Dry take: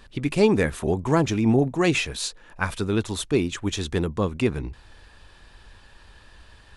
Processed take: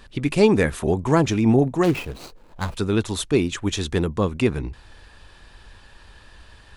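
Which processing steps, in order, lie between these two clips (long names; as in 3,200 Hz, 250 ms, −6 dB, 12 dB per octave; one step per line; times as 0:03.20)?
0:01.83–0:02.77: running median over 25 samples
level +2.5 dB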